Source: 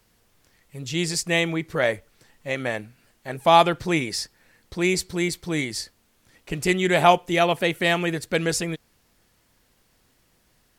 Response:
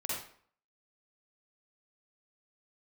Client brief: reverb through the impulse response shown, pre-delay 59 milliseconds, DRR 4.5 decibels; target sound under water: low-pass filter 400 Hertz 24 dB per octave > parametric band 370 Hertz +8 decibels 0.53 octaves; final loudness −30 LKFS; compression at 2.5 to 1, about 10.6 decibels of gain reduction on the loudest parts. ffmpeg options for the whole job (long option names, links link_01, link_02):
-filter_complex "[0:a]acompressor=threshold=-26dB:ratio=2.5,asplit=2[link_01][link_02];[1:a]atrim=start_sample=2205,adelay=59[link_03];[link_02][link_03]afir=irnorm=-1:irlink=0,volume=-8dB[link_04];[link_01][link_04]amix=inputs=2:normalize=0,lowpass=frequency=400:width=0.5412,lowpass=frequency=400:width=1.3066,equalizer=frequency=370:width_type=o:width=0.53:gain=8,volume=-1dB"